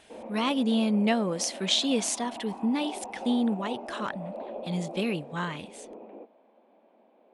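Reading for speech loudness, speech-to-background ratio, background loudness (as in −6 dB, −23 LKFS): −28.5 LKFS, 12.5 dB, −41.0 LKFS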